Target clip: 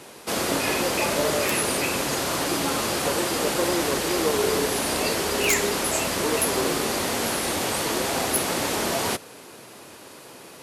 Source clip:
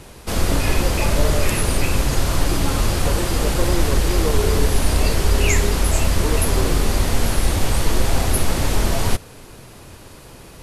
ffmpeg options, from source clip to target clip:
-af "highpass=260,aeval=exprs='(mod(3.35*val(0)+1,2)-1)/3.35':c=same"

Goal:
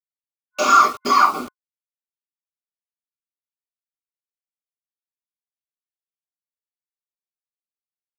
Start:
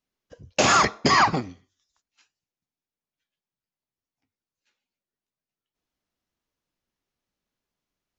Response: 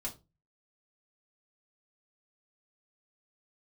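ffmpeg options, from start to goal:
-filter_complex "[0:a]highpass=f=270:w=0.5412,highpass=f=270:w=1.3066,equalizer=f=710:t=o:w=0.32:g=-3[a];[1:a]atrim=start_sample=2205,atrim=end_sample=6174[b];[a][b]afir=irnorm=-1:irlink=0,acrusher=bits=5:mix=0:aa=0.000001,superequalizer=10b=3.16:11b=0.398,volume=-2dB"

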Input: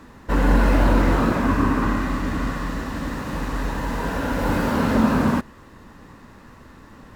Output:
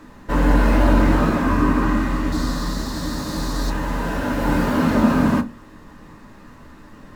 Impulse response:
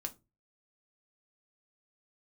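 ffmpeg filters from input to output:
-filter_complex "[0:a]asettb=1/sr,asplit=3[a][b][c];[a]atrim=end=2.324[d];[b]atrim=start=2.32:end=3.7,asetpts=PTS-STARTPTS,afade=t=in:d=0.004:c=qsin,afade=t=out:st=1.376:d=0.004:c=qsin,highshelf=f=3.4k:t=q:w=3:g=7[e];[c]atrim=start=3.696[f];[d][e]acrossfade=d=0.004:c1=hsin:c2=qsin[g];[g][f]acrossfade=d=0.004:c1=qsin:c2=hsin[h];[1:a]atrim=start_sample=2205[i];[h][i]afir=irnorm=-1:irlink=0,volume=2.5dB"

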